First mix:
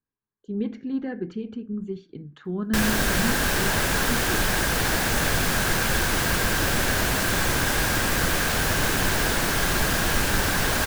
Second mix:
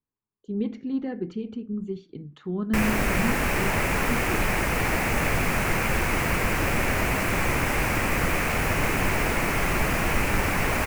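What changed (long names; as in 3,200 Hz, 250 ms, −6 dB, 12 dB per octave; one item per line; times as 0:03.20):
background: add high shelf with overshoot 2,900 Hz −6.5 dB, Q 3
master: add parametric band 1,600 Hz −10.5 dB 0.24 octaves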